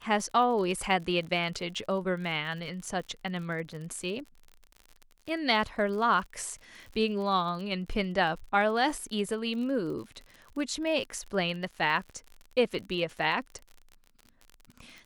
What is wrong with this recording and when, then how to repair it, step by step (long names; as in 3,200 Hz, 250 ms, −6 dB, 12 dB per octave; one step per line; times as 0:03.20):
surface crackle 47 per second −38 dBFS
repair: click removal